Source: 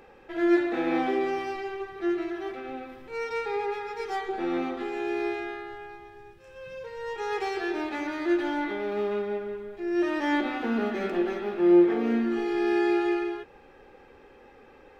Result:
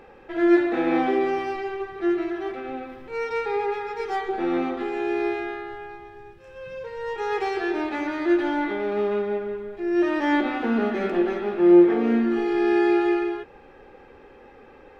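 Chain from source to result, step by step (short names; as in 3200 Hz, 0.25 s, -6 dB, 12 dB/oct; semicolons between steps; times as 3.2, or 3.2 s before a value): high shelf 4300 Hz -8 dB; gain +4.5 dB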